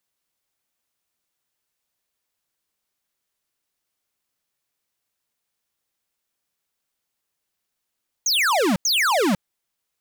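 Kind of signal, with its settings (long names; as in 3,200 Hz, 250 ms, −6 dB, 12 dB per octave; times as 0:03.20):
repeated falling chirps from 6,800 Hz, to 170 Hz, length 0.50 s square, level −19 dB, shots 2, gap 0.09 s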